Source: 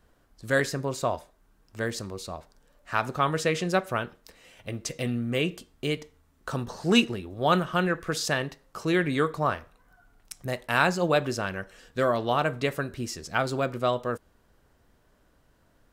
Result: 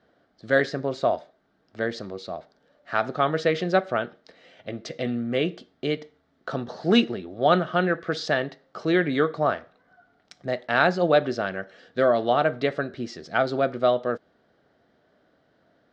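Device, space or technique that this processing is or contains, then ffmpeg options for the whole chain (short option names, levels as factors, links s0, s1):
kitchen radio: -af "highpass=180,equalizer=f=670:t=q:w=4:g=5,equalizer=f=1000:t=q:w=4:g=-9,equalizer=f=2600:t=q:w=4:g=-8,lowpass=f=4400:w=0.5412,lowpass=f=4400:w=1.3066,volume=1.5"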